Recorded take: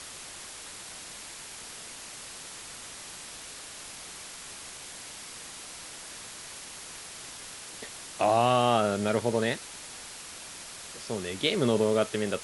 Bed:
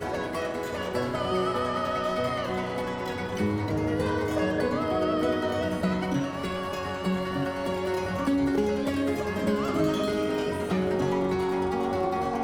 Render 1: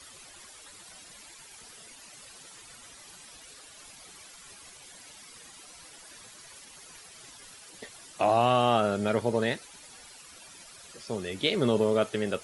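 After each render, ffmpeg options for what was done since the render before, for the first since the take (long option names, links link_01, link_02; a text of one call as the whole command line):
ffmpeg -i in.wav -af "afftdn=noise_reduction=12:noise_floor=-44" out.wav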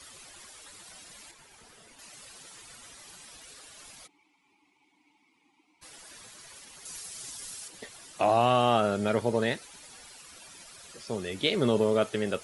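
ffmpeg -i in.wav -filter_complex "[0:a]asettb=1/sr,asplit=3[link_01][link_02][link_03];[link_01]atrim=end=1.314[link_04];[link_02]atrim=start=1.31:end=1.99,asetpts=PTS-STARTPTS,afade=type=in:duration=0.004:curve=qsin,afade=type=out:start_time=0.676:duration=0.004:curve=qsin,highshelf=frequency=2400:gain=-8.5[link_05];[link_03]atrim=start=1.986[link_06];[link_04][link_05]acrossfade=duration=0.004:curve1=hsin:curve2=qsin[link_07];[link_07][link_06]acrossfade=duration=0.004:curve1=qsin:curve2=hsin,asplit=3[link_08][link_09][link_10];[link_08]afade=type=out:start_time=4.06:duration=0.02[link_11];[link_09]asplit=3[link_12][link_13][link_14];[link_12]bandpass=frequency=300:width_type=q:width=8,volume=0dB[link_15];[link_13]bandpass=frequency=870:width_type=q:width=8,volume=-6dB[link_16];[link_14]bandpass=frequency=2240:width_type=q:width=8,volume=-9dB[link_17];[link_15][link_16][link_17]amix=inputs=3:normalize=0,afade=type=in:start_time=4.06:duration=0.02,afade=type=out:start_time=5.81:duration=0.02[link_18];[link_10]afade=type=in:start_time=5.81:duration=0.02[link_19];[link_11][link_18][link_19]amix=inputs=3:normalize=0,asettb=1/sr,asplit=3[link_20][link_21][link_22];[link_20]atrim=end=6.854[link_23];[link_21]atrim=start=6.85:end=7.68,asetpts=PTS-STARTPTS,afade=type=in:duration=0.004:curve=qsin,afade=type=out:start_time=0.826:duration=0.004:curve=qsin,bass=frequency=250:gain=3,treble=frequency=4000:gain=10[link_24];[link_22]atrim=start=7.676[link_25];[link_23][link_24]acrossfade=duration=0.004:curve1=hsin:curve2=qsin[link_26];[link_26][link_25]acrossfade=duration=0.004:curve1=qsin:curve2=hsin" out.wav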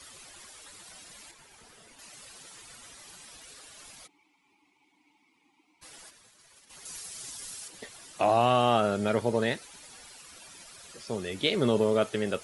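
ffmpeg -i in.wav -filter_complex "[0:a]asplit=3[link_01][link_02][link_03];[link_01]afade=type=out:start_time=6.09:duration=0.02[link_04];[link_02]agate=range=-33dB:threshold=-43dB:ratio=3:release=100:detection=peak,afade=type=in:start_time=6.09:duration=0.02,afade=type=out:start_time=6.69:duration=0.02[link_05];[link_03]afade=type=in:start_time=6.69:duration=0.02[link_06];[link_04][link_05][link_06]amix=inputs=3:normalize=0" out.wav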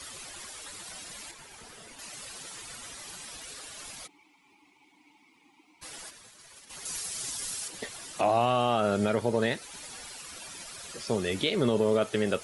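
ffmpeg -i in.wav -af "acontrast=51,alimiter=limit=-15dB:level=0:latency=1:release=297" out.wav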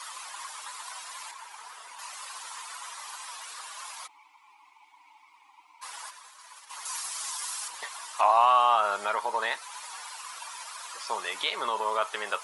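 ffmpeg -i in.wav -af "highpass=frequency=1000:width_type=q:width=5.1" out.wav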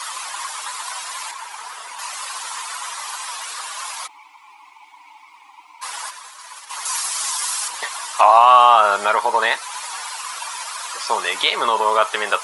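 ffmpeg -i in.wav -af "volume=11.5dB,alimiter=limit=-1dB:level=0:latency=1" out.wav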